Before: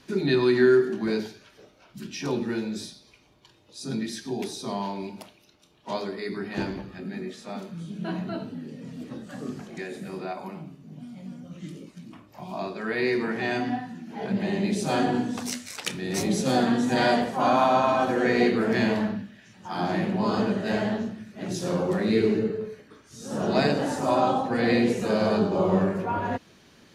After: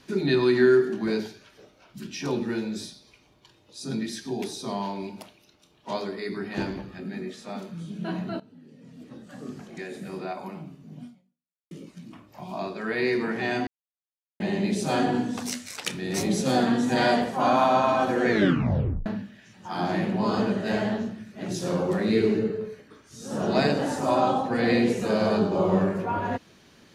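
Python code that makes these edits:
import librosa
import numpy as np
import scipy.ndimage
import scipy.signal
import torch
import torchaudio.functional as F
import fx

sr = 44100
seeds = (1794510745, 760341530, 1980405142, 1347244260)

y = fx.edit(x, sr, fx.fade_in_from(start_s=8.4, length_s=1.75, floor_db=-18.5),
    fx.fade_out_span(start_s=11.06, length_s=0.65, curve='exp'),
    fx.silence(start_s=13.67, length_s=0.73),
    fx.tape_stop(start_s=18.29, length_s=0.77), tone=tone)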